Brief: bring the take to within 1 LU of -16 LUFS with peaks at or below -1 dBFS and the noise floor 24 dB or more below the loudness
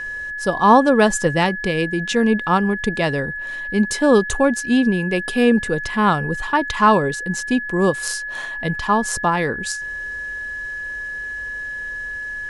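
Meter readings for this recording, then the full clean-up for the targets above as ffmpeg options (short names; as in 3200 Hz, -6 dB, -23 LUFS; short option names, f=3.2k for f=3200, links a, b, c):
steady tone 1700 Hz; tone level -26 dBFS; loudness -19.5 LUFS; peak -2.5 dBFS; loudness target -16.0 LUFS
-> -af "bandreject=f=1.7k:w=30"
-af "volume=3.5dB,alimiter=limit=-1dB:level=0:latency=1"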